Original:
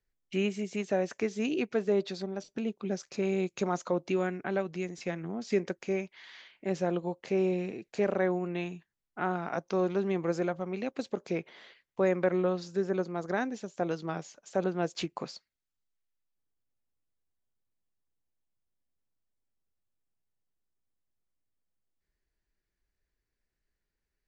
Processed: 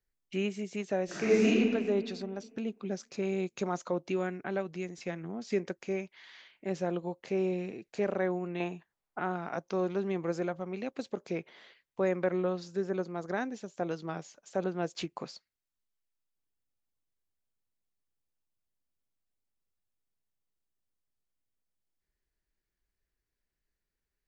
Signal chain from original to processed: 1.05–1.47 s: reverb throw, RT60 1.9 s, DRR -10 dB; 8.60–9.19 s: peaking EQ 800 Hz +12 dB 2.1 oct; trim -2.5 dB

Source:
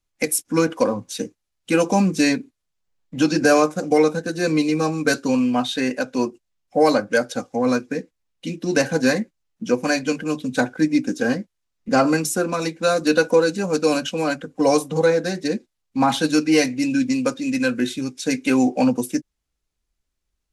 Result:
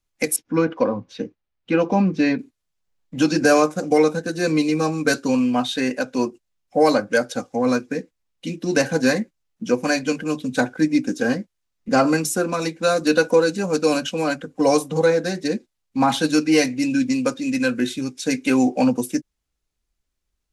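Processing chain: 0.36–2.39 s: distance through air 260 m

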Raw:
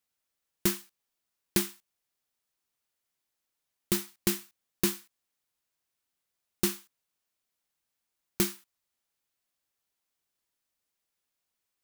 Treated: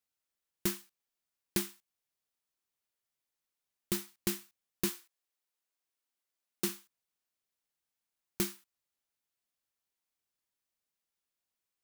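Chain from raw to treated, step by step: 4.88–6.68 s: high-pass 370 Hz -> 170 Hz 24 dB/octave; trim -5.5 dB

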